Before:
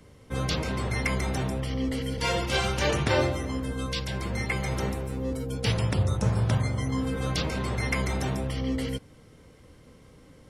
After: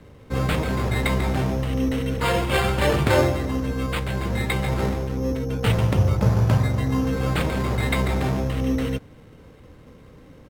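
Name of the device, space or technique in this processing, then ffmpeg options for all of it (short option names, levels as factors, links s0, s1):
crushed at another speed: -af "asetrate=55125,aresample=44100,acrusher=samples=6:mix=1:aa=0.000001,asetrate=35280,aresample=44100,highshelf=f=3900:g=-9,volume=2"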